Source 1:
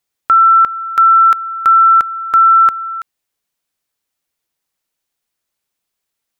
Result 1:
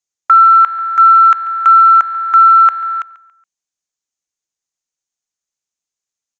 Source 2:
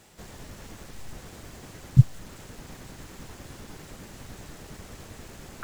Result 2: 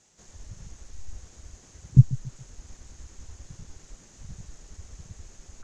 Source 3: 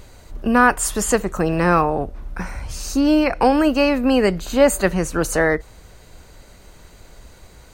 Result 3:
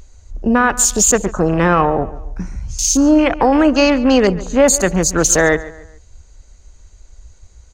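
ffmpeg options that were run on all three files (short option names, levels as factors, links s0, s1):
-filter_complex "[0:a]lowpass=f=6600:t=q:w=6,alimiter=limit=0.447:level=0:latency=1:release=40,afwtdn=0.0398,asplit=2[s0][s1];[s1]adelay=140,lowpass=f=4000:p=1,volume=0.141,asplit=2[s2][s3];[s3]adelay=140,lowpass=f=4000:p=1,volume=0.38,asplit=2[s4][s5];[s5]adelay=140,lowpass=f=4000:p=1,volume=0.38[s6];[s2][s4][s6]amix=inputs=3:normalize=0[s7];[s0][s7]amix=inputs=2:normalize=0,volume=1.68"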